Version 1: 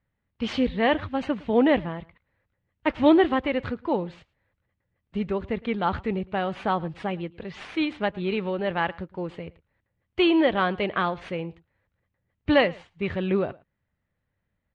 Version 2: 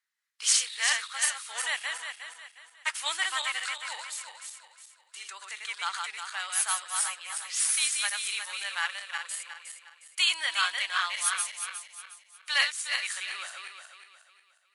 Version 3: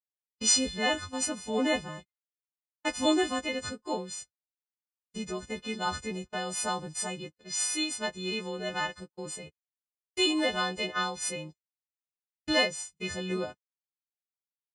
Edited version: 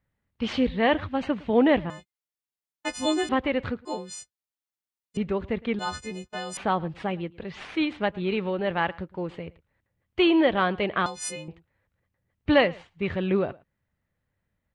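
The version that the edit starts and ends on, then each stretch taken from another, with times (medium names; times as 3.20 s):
1
1.90–3.29 s: from 3
3.85–5.17 s: from 3
5.79–6.57 s: from 3
11.06–11.48 s: from 3
not used: 2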